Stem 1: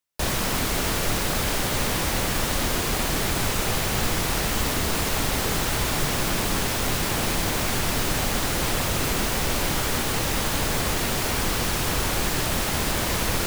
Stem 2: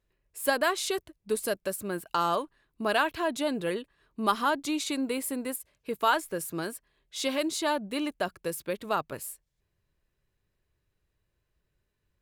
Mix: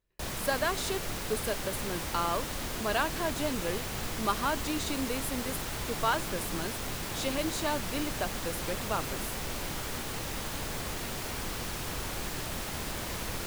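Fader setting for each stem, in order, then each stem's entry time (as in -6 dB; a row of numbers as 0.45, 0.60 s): -11.5, -4.0 dB; 0.00, 0.00 s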